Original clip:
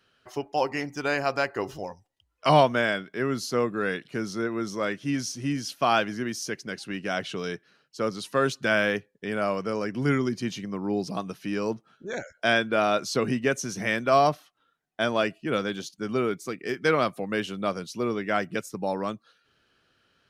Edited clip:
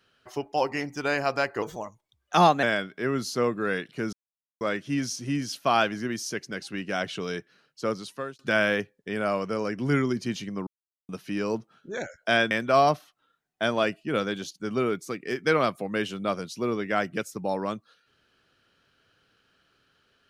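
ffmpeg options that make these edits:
ffmpeg -i in.wav -filter_complex "[0:a]asplit=9[link_01][link_02][link_03][link_04][link_05][link_06][link_07][link_08][link_09];[link_01]atrim=end=1.624[link_10];[link_02]atrim=start=1.62:end=2.79,asetpts=PTS-STARTPTS,asetrate=51156,aresample=44100,atrim=end_sample=44480,asetpts=PTS-STARTPTS[link_11];[link_03]atrim=start=2.786:end=4.29,asetpts=PTS-STARTPTS,afade=type=out:start_time=1.5:duration=0.004:curve=hsin[link_12];[link_04]atrim=start=4.29:end=4.77,asetpts=PTS-STARTPTS,volume=0[link_13];[link_05]atrim=start=4.77:end=8.55,asetpts=PTS-STARTPTS,afade=type=in:duration=0.004:curve=hsin,afade=type=out:start_time=3.26:duration=0.52[link_14];[link_06]atrim=start=8.55:end=10.83,asetpts=PTS-STARTPTS,afade=type=in:duration=0.004:curve=hsin,afade=type=out:start_time=2.276:duration=0.004:curve=hsin[link_15];[link_07]atrim=start=10.83:end=11.25,asetpts=PTS-STARTPTS,volume=0[link_16];[link_08]atrim=start=11.25:end=12.672,asetpts=PTS-STARTPTS,afade=type=in:duration=0.004:curve=hsin[link_17];[link_09]atrim=start=13.888[link_18];[link_10][link_11]acrossfade=duration=0.004:curve1=hsin:curve2=hsin[link_19];[link_12][link_13][link_14][link_15][link_16][link_17]concat=n=6:v=0:a=1[link_20];[link_19][link_20]acrossfade=duration=0.004:curve1=hsin:curve2=hsin[link_21];[link_21][link_18]acrossfade=duration=0.004:curve1=hsin:curve2=hsin" out.wav

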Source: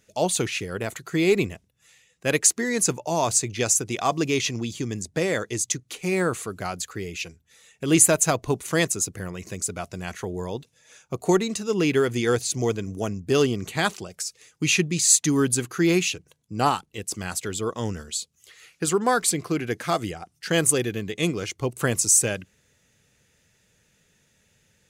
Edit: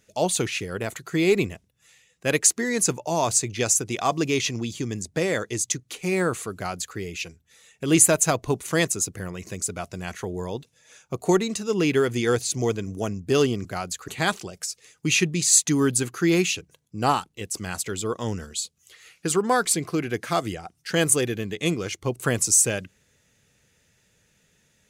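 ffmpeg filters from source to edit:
ffmpeg -i in.wav -filter_complex "[0:a]asplit=3[link_01][link_02][link_03];[link_01]atrim=end=13.652[link_04];[link_02]atrim=start=6.538:end=6.972[link_05];[link_03]atrim=start=13.648[link_06];[link_04][link_05]acrossfade=duration=0.004:curve1=hsin:curve2=hsin[link_07];[link_07][link_06]acrossfade=duration=0.004:curve1=hsin:curve2=hsin" out.wav

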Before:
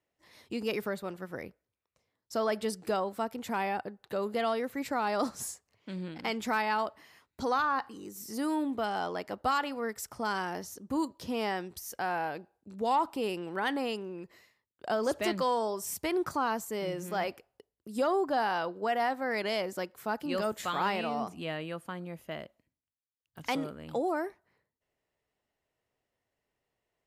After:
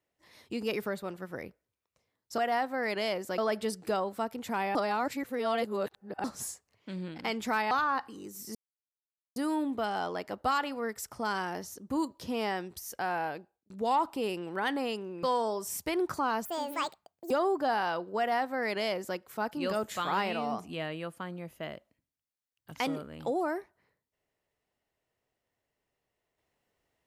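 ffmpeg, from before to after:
ffmpeg -i in.wav -filter_complex "[0:a]asplit=11[link_01][link_02][link_03][link_04][link_05][link_06][link_07][link_08][link_09][link_10][link_11];[link_01]atrim=end=2.382[link_12];[link_02]atrim=start=18.858:end=19.862[link_13];[link_03]atrim=start=2.378:end=3.752[link_14];[link_04]atrim=start=3.748:end=5.242,asetpts=PTS-STARTPTS,areverse[link_15];[link_05]atrim=start=5.238:end=6.712[link_16];[link_06]atrim=start=7.518:end=8.36,asetpts=PTS-STARTPTS,afade=type=out:start_time=0.838:duration=0.004:curve=hsin,apad=pad_dur=0.81[link_17];[link_07]atrim=start=8.36:end=12.7,asetpts=PTS-STARTPTS,afade=type=in:duration=0.004:curve=hsin,afade=type=out:start_time=3.95:duration=0.39[link_18];[link_08]atrim=start=12.7:end=14.232,asetpts=PTS-STARTPTS,afade=type=in:duration=0.004:curve=hsin[link_19];[link_09]atrim=start=15.398:end=16.624[link_20];[link_10]atrim=start=16.62:end=17.99,asetpts=PTS-STARTPTS,asetrate=70560,aresample=44100[link_21];[link_11]atrim=start=17.986[link_22];[link_12][link_13]acrossfade=duration=0.004:curve1=hsin:curve2=hsin[link_23];[link_23][link_14]acrossfade=duration=0.004:curve1=hsin:curve2=hsin[link_24];[link_24][link_15]acrossfade=duration=0.004:curve1=hsin:curve2=hsin[link_25];[link_25][link_16]acrossfade=duration=0.004:curve1=hsin:curve2=hsin[link_26];[link_17][link_18][link_19]concat=n=3:v=0:a=1[link_27];[link_26][link_27]acrossfade=duration=0.004:curve1=hsin:curve2=hsin[link_28];[link_28][link_20]acrossfade=duration=0.004:curve1=hsin:curve2=hsin[link_29];[link_29][link_21]acrossfade=duration=0.004:curve1=hsin:curve2=hsin[link_30];[link_30][link_22]acrossfade=duration=0.004:curve1=hsin:curve2=hsin" out.wav

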